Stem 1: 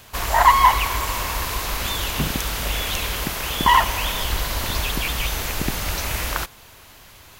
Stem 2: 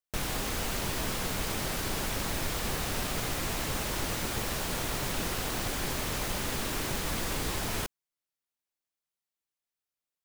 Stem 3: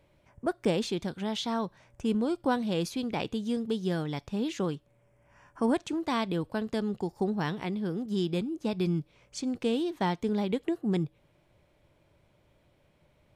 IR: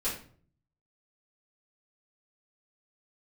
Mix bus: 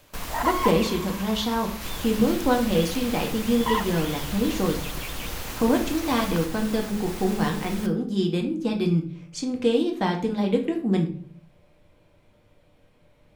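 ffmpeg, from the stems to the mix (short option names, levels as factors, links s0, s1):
-filter_complex "[0:a]volume=0.266[s0];[1:a]alimiter=level_in=1.33:limit=0.0631:level=0:latency=1:release=348,volume=0.75,volume=0.75,asplit=3[s1][s2][s3];[s1]atrim=end=0.71,asetpts=PTS-STARTPTS,afade=t=out:st=0.706:d=0.004:c=hsin[s4];[s2]atrim=start=0.71:end=1.81,asetpts=PTS-STARTPTS,volume=0[s5];[s3]atrim=start=1.81,asetpts=PTS-STARTPTS,afade=t=in:d=0.004:c=hsin[s6];[s4][s5][s6]concat=n=3:v=0:a=1,asplit=2[s7][s8];[s8]volume=0.355[s9];[2:a]volume=1.06,asplit=2[s10][s11];[s11]volume=0.631[s12];[3:a]atrim=start_sample=2205[s13];[s9][s12]amix=inputs=2:normalize=0[s14];[s14][s13]afir=irnorm=-1:irlink=0[s15];[s0][s7][s10][s15]amix=inputs=4:normalize=0"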